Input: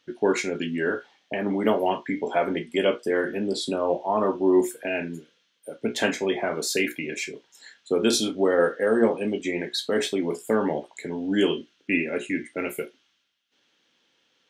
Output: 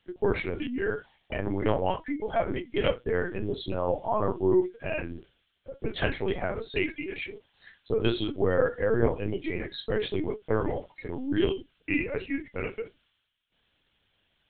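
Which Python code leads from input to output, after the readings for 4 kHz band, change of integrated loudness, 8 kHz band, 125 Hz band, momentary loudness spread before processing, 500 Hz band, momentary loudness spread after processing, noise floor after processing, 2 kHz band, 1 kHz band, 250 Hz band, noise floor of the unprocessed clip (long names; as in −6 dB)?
−7.5 dB, −4.0 dB, below −40 dB, +4.5 dB, 11 LU, −4.0 dB, 11 LU, −74 dBFS, −4.5 dB, −4.0 dB, −5.0 dB, −69 dBFS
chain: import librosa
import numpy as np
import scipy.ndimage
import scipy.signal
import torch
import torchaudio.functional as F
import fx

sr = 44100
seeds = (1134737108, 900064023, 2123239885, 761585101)

y = fx.lpc_vocoder(x, sr, seeds[0], excitation='pitch_kept', order=10)
y = y * 10.0 ** (-3.5 / 20.0)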